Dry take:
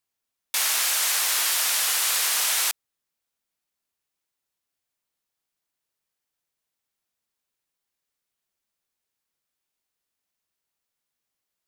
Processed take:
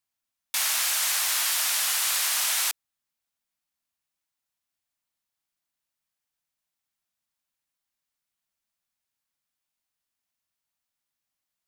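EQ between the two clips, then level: peaking EQ 430 Hz -12.5 dB 0.41 oct; -2.0 dB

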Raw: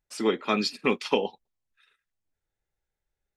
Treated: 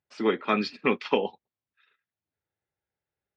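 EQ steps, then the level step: high-pass 81 Hz 24 dB/octave; dynamic bell 1.7 kHz, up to +5 dB, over -41 dBFS, Q 1.5; Gaussian low-pass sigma 2 samples; 0.0 dB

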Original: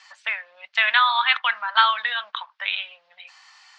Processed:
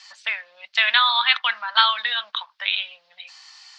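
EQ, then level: bass shelf 360 Hz +11 dB; treble shelf 3.6 kHz +7 dB; peaking EQ 4.6 kHz +8.5 dB 1.2 oct; -4.0 dB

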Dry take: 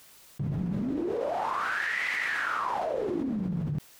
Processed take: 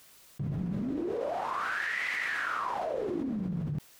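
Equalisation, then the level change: band-stop 870 Hz, Q 20; -2.5 dB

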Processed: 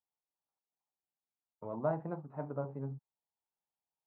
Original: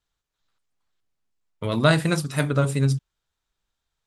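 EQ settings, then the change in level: high-pass 150 Hz 12 dB/octave; four-pole ladder low-pass 950 Hz, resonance 60%; -6.5 dB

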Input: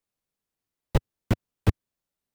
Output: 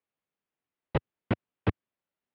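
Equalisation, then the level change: high-pass 200 Hz 6 dB/octave; low-pass 3.1 kHz 24 dB/octave; 0.0 dB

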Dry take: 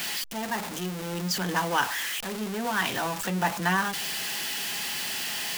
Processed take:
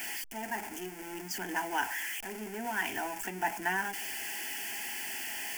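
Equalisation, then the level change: peaking EQ 3.8 kHz +3 dB; static phaser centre 790 Hz, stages 8; -4.0 dB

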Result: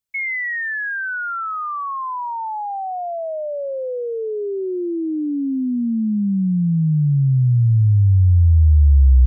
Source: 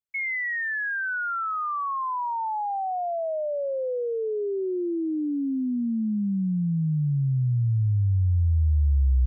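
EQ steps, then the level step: bass shelf 280 Hz +10 dB; treble shelf 2 kHz +9 dB; 0.0 dB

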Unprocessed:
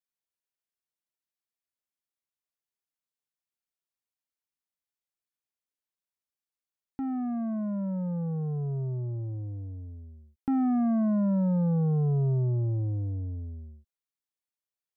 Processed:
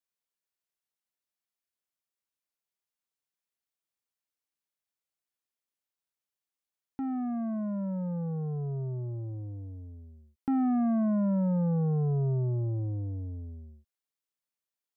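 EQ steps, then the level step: bass shelf 150 Hz -4.5 dB; 0.0 dB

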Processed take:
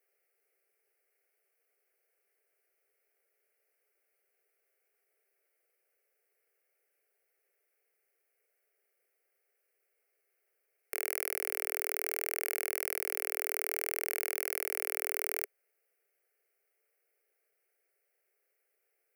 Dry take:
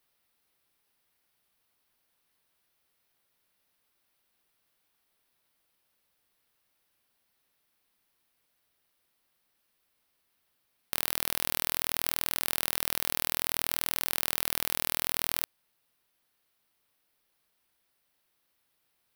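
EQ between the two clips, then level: resonant high-pass 410 Hz, resonance Q 4.9; peaking EQ 2.2 kHz +7 dB 0.3 oct; static phaser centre 990 Hz, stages 6; -3.5 dB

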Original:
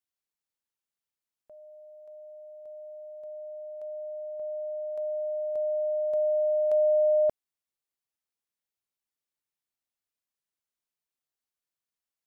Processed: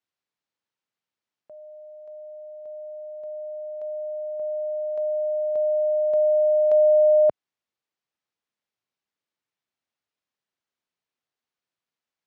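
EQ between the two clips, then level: high-pass 97 Hz; distance through air 120 m; +6.5 dB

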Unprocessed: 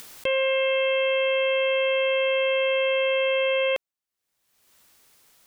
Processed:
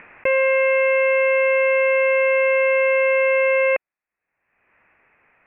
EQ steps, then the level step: rippled Chebyshev low-pass 2.6 kHz, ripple 3 dB; peaking EQ 1.9 kHz +6 dB 1.8 oct; +5.0 dB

